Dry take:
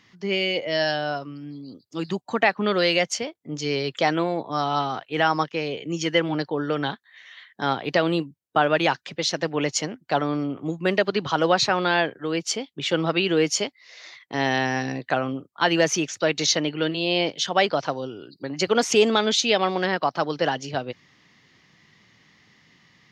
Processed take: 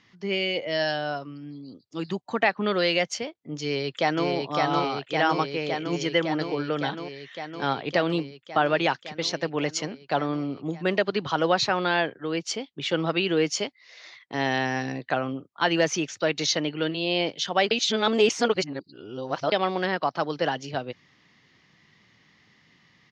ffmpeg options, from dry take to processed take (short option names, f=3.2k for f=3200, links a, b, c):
-filter_complex "[0:a]asplit=2[a][b];[b]afade=t=in:st=3.61:d=0.01,afade=t=out:st=4.28:d=0.01,aecho=0:1:560|1120|1680|2240|2800|3360|3920|4480|5040|5600|6160|6720:0.749894|0.599915|0.479932|0.383946|0.307157|0.245725|0.19658|0.157264|0.125811|0.100649|0.0805193|0.0644154[c];[a][c]amix=inputs=2:normalize=0,asplit=3[d][e][f];[d]atrim=end=17.712[g];[e]atrim=start=17.708:end=19.522,asetpts=PTS-STARTPTS,areverse[h];[f]atrim=start=19.518[i];[g][h]acrossfade=d=0.004:c1=hsin:c2=hsin[j];[j][i]acrossfade=d=0.004:c1=hsin:c2=hsin,lowpass=6.4k,volume=-2.5dB"